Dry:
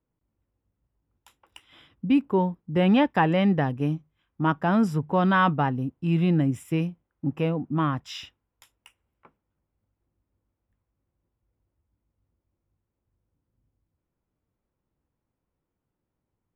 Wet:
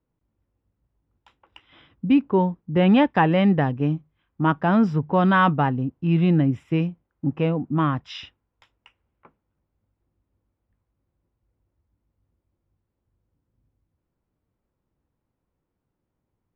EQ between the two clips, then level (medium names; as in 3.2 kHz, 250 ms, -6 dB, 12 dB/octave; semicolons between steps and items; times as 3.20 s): dynamic bell 4.9 kHz, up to +4 dB, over -44 dBFS, Q 0.7; distance through air 220 m; +3.5 dB